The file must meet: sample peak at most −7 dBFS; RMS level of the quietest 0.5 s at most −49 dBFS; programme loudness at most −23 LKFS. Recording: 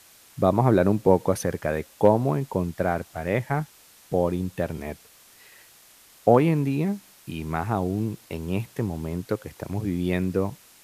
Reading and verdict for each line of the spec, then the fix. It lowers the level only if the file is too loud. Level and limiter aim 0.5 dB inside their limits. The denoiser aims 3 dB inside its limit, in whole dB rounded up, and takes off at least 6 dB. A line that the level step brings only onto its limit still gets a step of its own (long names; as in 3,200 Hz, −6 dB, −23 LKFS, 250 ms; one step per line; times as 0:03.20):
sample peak −4.0 dBFS: out of spec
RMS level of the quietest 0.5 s −53 dBFS: in spec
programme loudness −25.0 LKFS: in spec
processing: brickwall limiter −7.5 dBFS